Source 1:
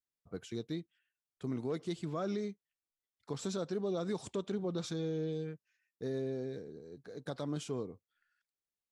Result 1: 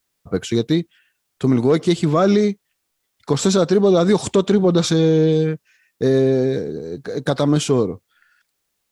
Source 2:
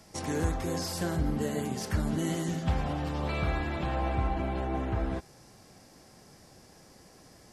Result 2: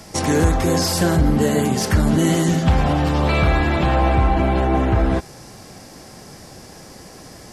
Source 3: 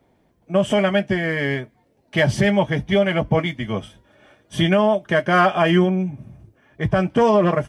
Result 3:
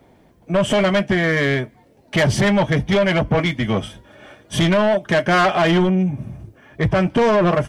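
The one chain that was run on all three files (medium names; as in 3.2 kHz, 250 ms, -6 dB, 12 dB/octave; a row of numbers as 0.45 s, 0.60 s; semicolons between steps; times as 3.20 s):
in parallel at -2 dB: compression, threshold -25 dBFS; on the sum: saturation -15.5 dBFS; normalise loudness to -18 LUFS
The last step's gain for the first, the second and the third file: +16.5 dB, +10.0 dB, +4.0 dB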